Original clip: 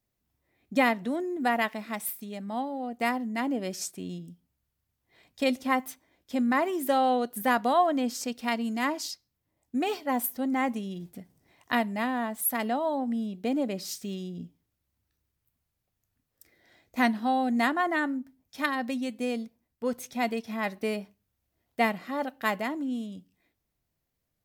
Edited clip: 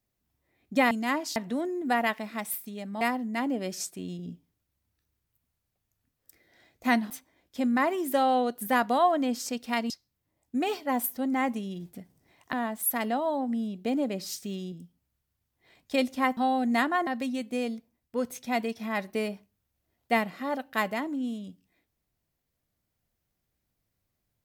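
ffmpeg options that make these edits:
-filter_complex "[0:a]asplit=11[a][b][c][d][e][f][g][h][i][j][k];[a]atrim=end=0.912[l];[b]atrim=start=8.648:end=9.102[m];[c]atrim=start=0.908:end=2.562[n];[d]atrim=start=3.018:end=4.202[o];[e]atrim=start=14.308:end=17.222[p];[f]atrim=start=5.848:end=8.652[q];[g]atrim=start=9.098:end=11.732[r];[h]atrim=start=12.118:end=14.312[s];[i]atrim=start=4.198:end=5.852[t];[j]atrim=start=17.218:end=17.922[u];[k]atrim=start=18.748[v];[l][m]acrossfade=d=0.004:c1=hsin:c2=hsin[w];[w][n]acrossfade=d=0.004:c1=hsin:c2=hsin[x];[x][o]acrossfade=d=0.004:c1=hsin:c2=hsin[y];[y][p]acrossfade=d=0.004:c1=hsin:c2=hsin[z];[z][q]acrossfade=d=0.004:c1=hsin:c2=hsin[aa];[aa][r]acrossfade=d=0.004:c1=hsin:c2=hsin[ab];[ab][s]acrossfade=d=0.004:c1=hsin:c2=hsin[ac];[ac][t]acrossfade=d=0.004:c1=hsin:c2=hsin[ad];[ad][u]acrossfade=d=0.004:c1=hsin:c2=hsin[ae];[ae][v]acrossfade=d=0.004:c1=hsin:c2=hsin"

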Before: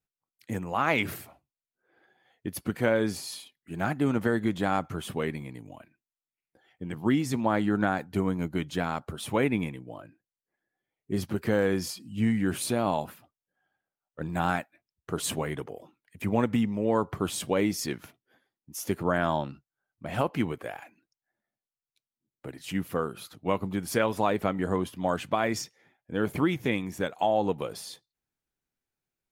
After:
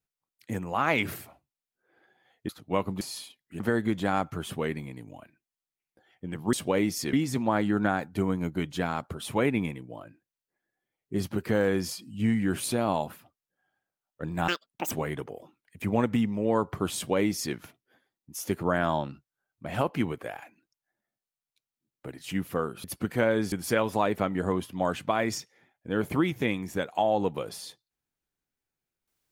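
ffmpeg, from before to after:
-filter_complex "[0:a]asplit=10[a][b][c][d][e][f][g][h][i][j];[a]atrim=end=2.492[k];[b]atrim=start=23.238:end=23.762[l];[c]atrim=start=3.168:end=3.762[m];[d]atrim=start=4.178:end=7.112[n];[e]atrim=start=17.348:end=17.952[o];[f]atrim=start=7.108:end=14.464[p];[g]atrim=start=14.46:end=15.31,asetpts=PTS-STARTPTS,asetrate=86877,aresample=44100[q];[h]atrim=start=15.306:end=23.242[r];[i]atrim=start=2.488:end=3.172[s];[j]atrim=start=23.758[t];[k][l]acrossfade=d=0.004:c1=hsin:c2=hsin[u];[u][m]acrossfade=d=0.004:c1=hsin:c2=hsin[v];[v][n]acrossfade=d=0.004:c1=hsin:c2=hsin[w];[w][o]acrossfade=d=0.004:c1=hsin:c2=hsin[x];[x][p]acrossfade=d=0.004:c1=hsin:c2=hsin[y];[y][q]acrossfade=d=0.004:c1=hsin:c2=hsin[z];[z][r]acrossfade=d=0.004:c1=hsin:c2=hsin[aa];[aa][s]acrossfade=d=0.004:c1=hsin:c2=hsin[ab];[ab][t]acrossfade=d=0.004:c1=hsin:c2=hsin"

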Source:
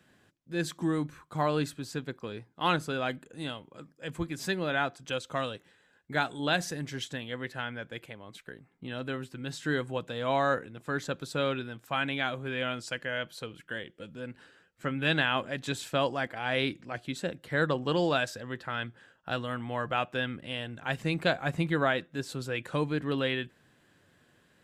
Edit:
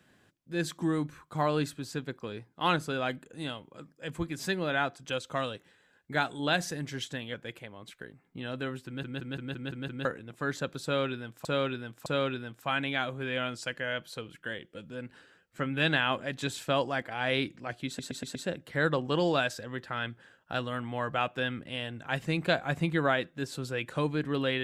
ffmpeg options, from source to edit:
-filter_complex "[0:a]asplit=15[a][b][c][d][e][f][g][h][i][j][k][l][m][n][o];[a]atrim=end=7.342[p];[b]atrim=start=7.808:end=9.502[q];[c]atrim=start=9.328:end=9.502[r];[d]atrim=start=9.328:end=9.502[s];[e]atrim=start=9.328:end=9.502[t];[f]atrim=start=9.328:end=9.502[u];[g]atrim=start=9.328:end=9.502[v];[h]atrim=start=9.328:end=9.502[w];[i]atrim=start=10.518:end=11.922[x];[j]atrim=start=11.308:end=11.922[y];[k]atrim=start=11.308:end=17.242[z];[l]atrim=start=17.118:end=17.242[aa];[m]atrim=start=17.118:end=17.242[ab];[n]atrim=start=17.118:end=17.242[ac];[o]atrim=start=17.118[ad];[p][q]acrossfade=d=0.004:c1=hsin:c2=hsin[ae];[ae][r]acrossfade=d=0.004:c1=hsin:c2=hsin[af];[af][s]acrossfade=d=0.004:c1=hsin:c2=hsin[ag];[ag][t]acrossfade=d=0.004:c1=hsin:c2=hsin[ah];[ah][u]acrossfade=d=0.004:c1=hsin:c2=hsin[ai];[ai][v]acrossfade=d=0.004:c1=hsin:c2=hsin[aj];[aj][w]acrossfade=d=0.004:c1=hsin:c2=hsin[ak];[ak][x]acrossfade=d=0.004:c1=hsin:c2=hsin[al];[al][y]acrossfade=d=0.004:c1=hsin:c2=hsin[am];[am][z]acrossfade=d=0.004:c1=hsin:c2=hsin[an];[an][aa]acrossfade=d=0.004:c1=hsin:c2=hsin[ao];[ao][ab]acrossfade=d=0.004:c1=hsin:c2=hsin[ap];[ap][ac]acrossfade=d=0.004:c1=hsin:c2=hsin[aq];[aq][ad]acrossfade=d=0.004:c1=hsin:c2=hsin"

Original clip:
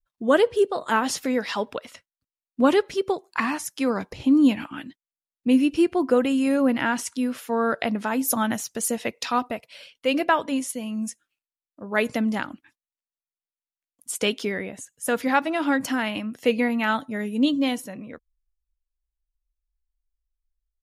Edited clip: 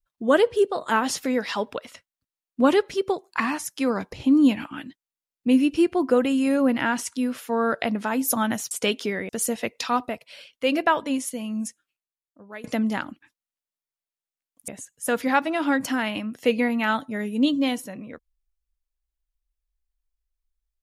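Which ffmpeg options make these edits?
-filter_complex "[0:a]asplit=5[a][b][c][d][e];[a]atrim=end=8.712[f];[b]atrim=start=14.098:end=14.682[g];[c]atrim=start=8.708:end=12.06,asetpts=PTS-STARTPTS,afade=t=out:st=2.362:d=0.99:silence=0.0841395[h];[d]atrim=start=12.06:end=14.102,asetpts=PTS-STARTPTS,afade=t=in:d=0.004:c=hsin:silence=0.0841395[i];[e]atrim=start=14.678[j];[f][g]acrossfade=d=0.004:c1=hsin:c2=hsin[k];[h][i]concat=n=2:v=0:a=1[l];[k][l]acrossfade=d=0.004:c1=hsin:c2=hsin[m];[m][j]acrossfade=d=0.004:c1=hsin:c2=hsin"

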